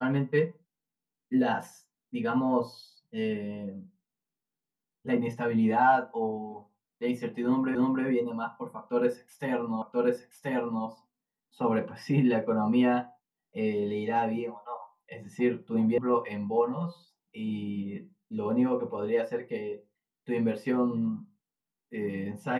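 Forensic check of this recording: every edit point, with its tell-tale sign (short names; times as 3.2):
7.75 repeat of the last 0.31 s
9.82 repeat of the last 1.03 s
15.98 sound cut off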